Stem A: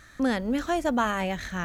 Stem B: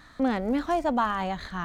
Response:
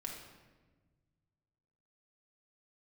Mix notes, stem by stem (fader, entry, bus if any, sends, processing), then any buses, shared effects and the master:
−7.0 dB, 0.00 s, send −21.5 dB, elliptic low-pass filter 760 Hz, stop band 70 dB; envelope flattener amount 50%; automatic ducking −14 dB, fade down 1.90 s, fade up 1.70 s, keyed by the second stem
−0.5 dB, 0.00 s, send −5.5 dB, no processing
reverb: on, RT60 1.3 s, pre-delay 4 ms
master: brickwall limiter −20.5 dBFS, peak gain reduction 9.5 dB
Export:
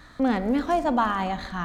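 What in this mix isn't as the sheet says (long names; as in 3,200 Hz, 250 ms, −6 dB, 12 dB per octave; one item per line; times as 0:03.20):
stem A −7.0 dB → −15.5 dB
master: missing brickwall limiter −20.5 dBFS, peak gain reduction 9.5 dB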